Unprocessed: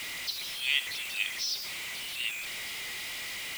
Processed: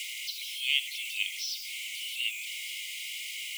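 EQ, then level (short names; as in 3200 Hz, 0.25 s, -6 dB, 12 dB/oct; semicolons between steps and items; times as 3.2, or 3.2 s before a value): dynamic EQ 7000 Hz, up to -5 dB, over -43 dBFS, Q 0.73; rippled Chebyshev high-pass 2100 Hz, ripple 6 dB; +5.0 dB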